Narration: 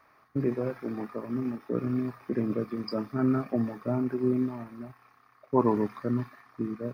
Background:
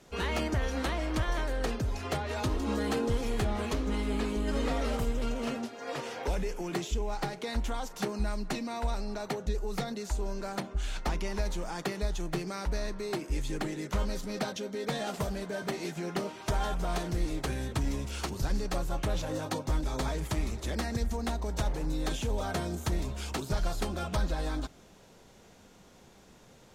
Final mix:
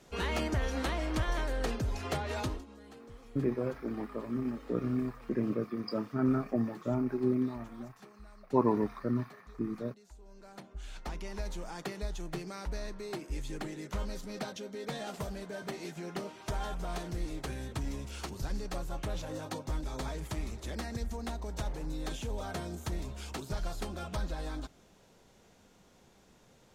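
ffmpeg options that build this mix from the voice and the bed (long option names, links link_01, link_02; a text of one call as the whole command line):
ffmpeg -i stem1.wav -i stem2.wav -filter_complex "[0:a]adelay=3000,volume=-3dB[link_01];[1:a]volume=15dB,afade=type=out:start_time=2.39:duration=0.27:silence=0.0944061,afade=type=in:start_time=10.23:duration=1.33:silence=0.149624[link_02];[link_01][link_02]amix=inputs=2:normalize=0" out.wav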